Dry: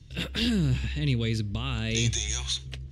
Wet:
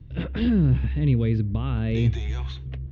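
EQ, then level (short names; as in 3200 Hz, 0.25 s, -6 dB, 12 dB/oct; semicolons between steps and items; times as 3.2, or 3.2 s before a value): tape spacing loss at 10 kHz 40 dB; high shelf 3800 Hz -10 dB; +6.5 dB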